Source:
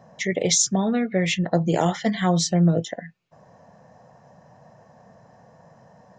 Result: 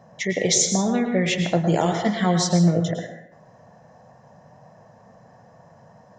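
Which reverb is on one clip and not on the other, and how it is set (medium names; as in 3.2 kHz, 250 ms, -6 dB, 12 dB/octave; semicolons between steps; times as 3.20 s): plate-style reverb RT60 0.74 s, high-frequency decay 0.6×, pre-delay 95 ms, DRR 5 dB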